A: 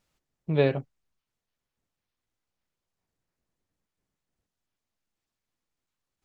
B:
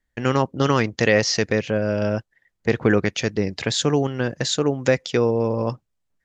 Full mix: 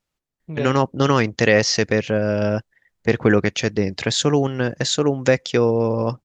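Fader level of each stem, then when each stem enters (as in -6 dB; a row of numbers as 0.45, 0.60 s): -4.0, +2.0 dB; 0.00, 0.40 s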